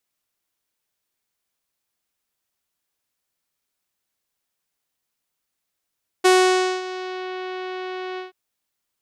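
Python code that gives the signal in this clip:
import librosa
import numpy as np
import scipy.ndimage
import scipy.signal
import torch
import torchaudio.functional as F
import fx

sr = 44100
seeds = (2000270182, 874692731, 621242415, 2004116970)

y = fx.sub_voice(sr, note=66, wave='saw', cutoff_hz=4000.0, q=0.83, env_oct=1.5, env_s=1.04, attack_ms=15.0, decay_s=0.56, sustain_db=-17, release_s=0.14, note_s=1.94, slope=24)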